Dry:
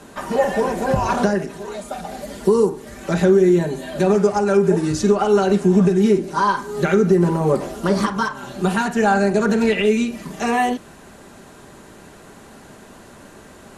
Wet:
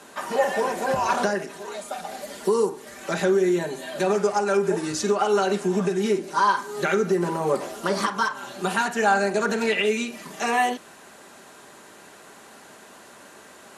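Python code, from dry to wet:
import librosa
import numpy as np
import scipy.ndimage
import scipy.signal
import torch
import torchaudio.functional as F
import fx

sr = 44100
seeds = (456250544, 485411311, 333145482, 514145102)

y = fx.highpass(x, sr, hz=690.0, slope=6)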